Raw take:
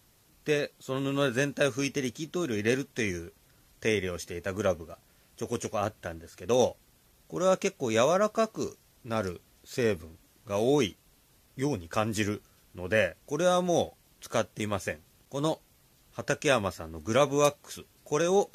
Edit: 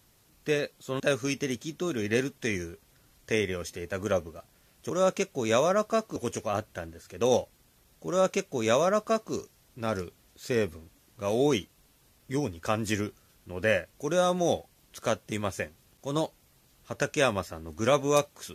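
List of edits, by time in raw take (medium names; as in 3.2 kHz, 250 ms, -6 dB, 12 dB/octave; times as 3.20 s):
1.00–1.54 s: delete
7.35–8.61 s: copy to 5.44 s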